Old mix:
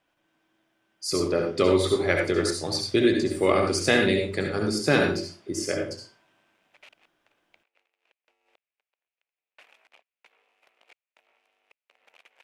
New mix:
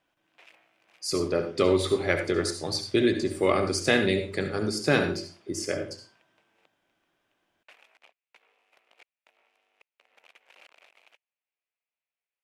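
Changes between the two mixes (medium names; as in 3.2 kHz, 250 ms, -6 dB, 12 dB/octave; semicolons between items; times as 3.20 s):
speech: send -6.0 dB; background: entry -1.90 s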